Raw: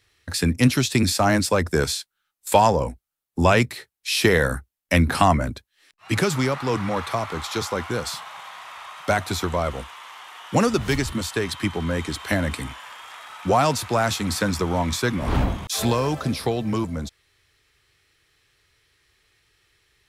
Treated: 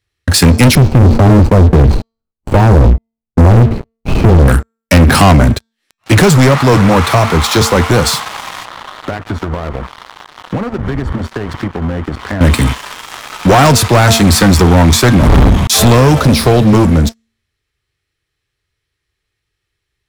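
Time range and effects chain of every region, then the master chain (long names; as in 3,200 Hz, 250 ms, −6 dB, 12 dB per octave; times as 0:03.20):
0:00.75–0:04.48: running median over 25 samples + downward compressor 2.5 to 1, threshold −25 dBFS + spectral tilt −3.5 dB per octave
0:08.65–0:12.41: Savitzky-Golay smoothing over 41 samples + downward compressor, threshold −36 dBFS
whole clip: low-shelf EQ 280 Hz +7.5 dB; hum removal 226.3 Hz, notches 36; leveller curve on the samples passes 5; level −1 dB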